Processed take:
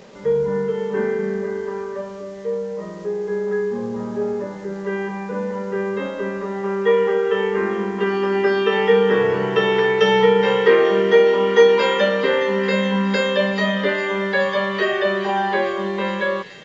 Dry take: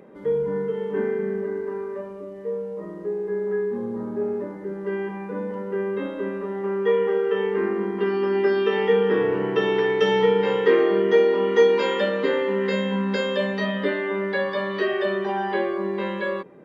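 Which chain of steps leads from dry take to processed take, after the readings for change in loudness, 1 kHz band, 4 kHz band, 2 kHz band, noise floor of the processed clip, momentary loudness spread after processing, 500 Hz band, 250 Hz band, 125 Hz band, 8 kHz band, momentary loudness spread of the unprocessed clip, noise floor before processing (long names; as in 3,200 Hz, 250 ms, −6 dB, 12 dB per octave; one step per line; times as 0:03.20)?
+4.0 dB, +6.0 dB, +6.5 dB, +6.5 dB, −33 dBFS, 12 LU, +3.5 dB, +3.0 dB, +4.5 dB, can't be measured, 12 LU, −37 dBFS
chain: parametric band 310 Hz −12 dB 0.54 octaves
bit reduction 9 bits
delay with a high-pass on its return 420 ms, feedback 84%, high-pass 3,000 Hz, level −12 dB
downsampling to 16,000 Hz
level +6.5 dB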